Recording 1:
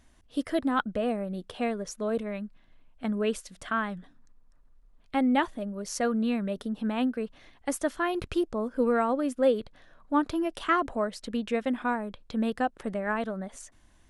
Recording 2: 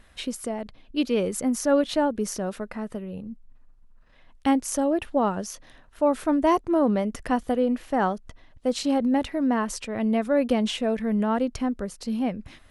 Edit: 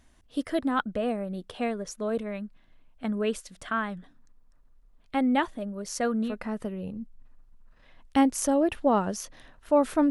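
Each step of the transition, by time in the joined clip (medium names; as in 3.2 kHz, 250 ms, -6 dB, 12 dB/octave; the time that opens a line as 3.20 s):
recording 1
6.29 s: go over to recording 2 from 2.59 s, crossfade 0.14 s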